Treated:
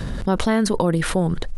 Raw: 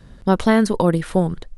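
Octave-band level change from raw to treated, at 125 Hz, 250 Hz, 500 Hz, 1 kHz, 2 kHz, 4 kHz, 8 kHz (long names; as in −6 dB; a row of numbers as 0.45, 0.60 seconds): −1.0, −3.0, −3.0, −3.0, −1.0, +3.0, +5.5 decibels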